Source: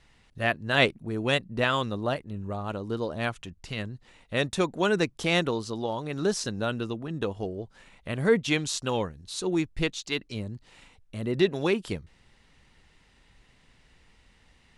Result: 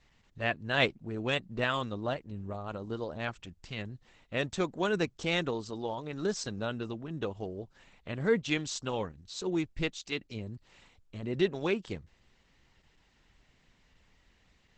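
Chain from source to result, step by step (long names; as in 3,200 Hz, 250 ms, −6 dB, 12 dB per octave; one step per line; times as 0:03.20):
level −4.5 dB
Opus 12 kbit/s 48,000 Hz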